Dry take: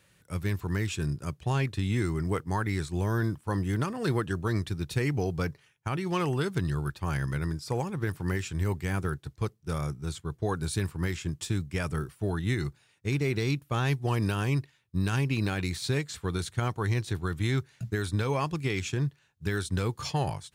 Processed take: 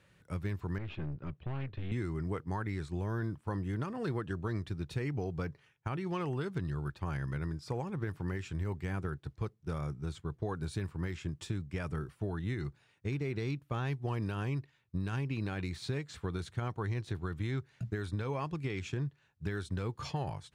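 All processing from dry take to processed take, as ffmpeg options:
ffmpeg -i in.wav -filter_complex "[0:a]asettb=1/sr,asplit=3[link_01][link_02][link_03];[link_01]atrim=end=0.784[link_04];[link_02]atrim=start=0.78:end=1.92,asetpts=PTS-STARTPTS,afade=type=in:duration=0.004:curve=qsin,afade=type=out:start_time=1.136:duration=0.004:curve=qsin,aeval=exprs='(tanh(35.5*val(0)+0.65)-tanh(0.65))/35.5':channel_layout=same,lowpass=frequency=3500:width=0.5412,lowpass=frequency=3500:width=1.3066[link_05];[link_03]atrim=start=1.916[link_06];[link_04][link_05]acrossfade=duration=0.004:curve1=hsin:curve2=qsin[link_07];[link_07][link_06]acrossfade=duration=0.004:curve1=qsin:curve2=hsin,acompressor=threshold=-35dB:ratio=2.5,lowpass=frequency=2400:poles=1" out.wav

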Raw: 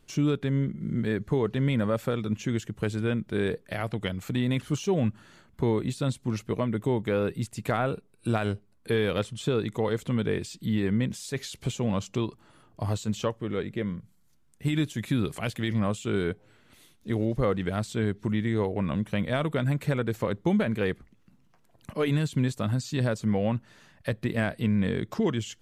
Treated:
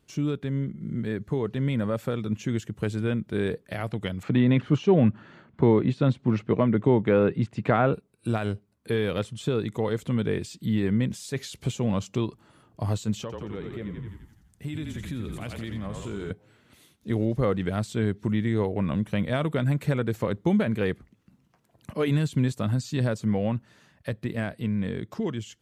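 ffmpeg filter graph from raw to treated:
ffmpeg -i in.wav -filter_complex "[0:a]asettb=1/sr,asplit=3[link_01][link_02][link_03];[link_01]atrim=end=4.234[link_04];[link_02]atrim=start=4.23:end=7.94,asetpts=PTS-STARTPTS,afade=type=in:duration=0.004:curve=qsin,afade=type=out:start_time=3.706:duration=0.004:curve=qsin,acontrast=72,highpass=110,lowpass=2600[link_05];[link_03]atrim=start=7.936[link_06];[link_04][link_05]acrossfade=duration=0.004:curve1=hsin:curve2=qsin[link_07];[link_07][link_06]acrossfade=duration=0.004:curve1=qsin:curve2=hsin,asettb=1/sr,asplit=3[link_08][link_09][link_10];[link_08]atrim=end=13.214[link_11];[link_09]atrim=start=13.21:end=16.31,asetpts=PTS-STARTPTS,afade=type=in:duration=0.004:curve=qsin,afade=type=out:start_time=3.096:duration=0.004:curve=qsin,asplit=9[link_12][link_13][link_14][link_15][link_16][link_17][link_18][link_19][link_20];[link_13]adelay=85,afreqshift=-38,volume=-6dB[link_21];[link_14]adelay=170,afreqshift=-76,volume=-10.7dB[link_22];[link_15]adelay=255,afreqshift=-114,volume=-15.5dB[link_23];[link_16]adelay=340,afreqshift=-152,volume=-20.2dB[link_24];[link_17]adelay=425,afreqshift=-190,volume=-24.9dB[link_25];[link_18]adelay=510,afreqshift=-228,volume=-29.7dB[link_26];[link_19]adelay=595,afreqshift=-266,volume=-34.4dB[link_27];[link_20]adelay=680,afreqshift=-304,volume=-39.1dB[link_28];[link_12][link_21][link_22][link_23][link_24][link_25][link_26][link_27][link_28]amix=inputs=9:normalize=0,atrim=end_sample=136710,acompressor=threshold=-34dB:ratio=3:attack=3.2:release=140:knee=1:detection=peak[link_29];[link_10]atrim=start=16.306[link_30];[link_11][link_29]acrossfade=duration=0.004:curve1=hsin:curve2=qsin[link_31];[link_31][link_30]acrossfade=duration=0.004:curve1=qsin:curve2=hsin,highpass=53,lowshelf=frequency=430:gain=3,dynaudnorm=framelen=130:gausssize=31:maxgain=4dB,volume=-4.5dB" out.wav

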